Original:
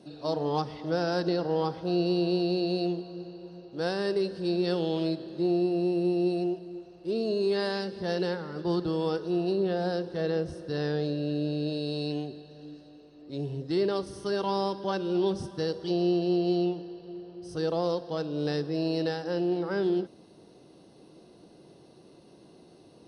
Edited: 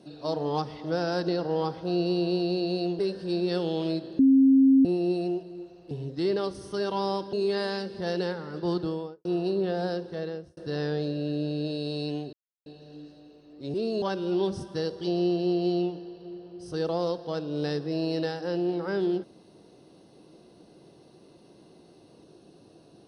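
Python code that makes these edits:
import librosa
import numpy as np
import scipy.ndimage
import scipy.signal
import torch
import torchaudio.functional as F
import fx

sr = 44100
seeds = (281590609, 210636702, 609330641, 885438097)

y = fx.studio_fade_out(x, sr, start_s=8.81, length_s=0.46)
y = fx.edit(y, sr, fx.cut(start_s=2.99, length_s=1.16),
    fx.bleep(start_s=5.35, length_s=0.66, hz=268.0, db=-14.5),
    fx.swap(start_s=7.07, length_s=0.28, other_s=13.43, other_length_s=1.42),
    fx.fade_out_span(start_s=9.77, length_s=0.82, curve='qsin'),
    fx.insert_silence(at_s=12.35, length_s=0.33), tone=tone)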